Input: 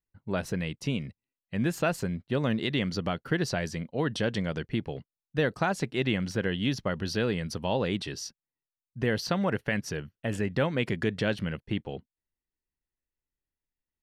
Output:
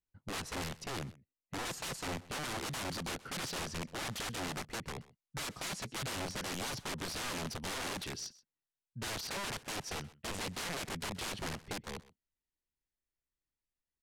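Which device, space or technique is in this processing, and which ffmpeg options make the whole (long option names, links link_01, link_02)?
overflowing digital effects unit: -filter_complex "[0:a]asettb=1/sr,asplit=3[link_01][link_02][link_03];[link_01]atrim=end=0.844[link_04];[link_02]atrim=start=0.84:end=1.65,asetpts=PTS-STARTPTS,afade=type=in:duration=0.004:curve=qsin,afade=type=out:start_time=0.806:duration=0.004:curve=qsin,lowpass=frequency=1000:poles=1[link_05];[link_03]atrim=start=1.646[link_06];[link_04][link_05]acrossfade=duration=0.004:curve1=hsin:curve2=qsin[link_07];[link_07][link_06]acrossfade=duration=0.004:curve1=qsin:curve2=hsin,aeval=exprs='(mod(29.9*val(0)+1,2)-1)/29.9':channel_layout=same,lowpass=11000,aecho=1:1:128:0.1,volume=-4dB"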